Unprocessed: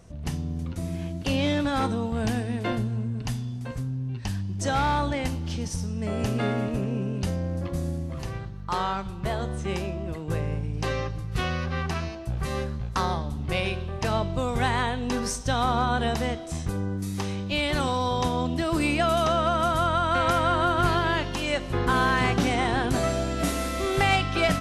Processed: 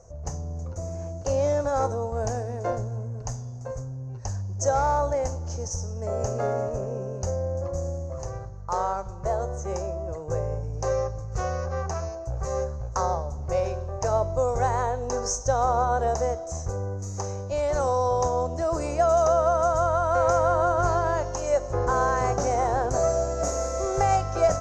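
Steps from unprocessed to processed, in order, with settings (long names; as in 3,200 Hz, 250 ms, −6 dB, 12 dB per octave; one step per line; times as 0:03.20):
drawn EQ curve 100 Hz 0 dB, 210 Hz −13 dB, 300 Hz −10 dB, 530 Hz +8 dB, 1,400 Hz −4 dB, 3,400 Hz −24 dB, 6,600 Hz +10 dB, 9,400 Hz −21 dB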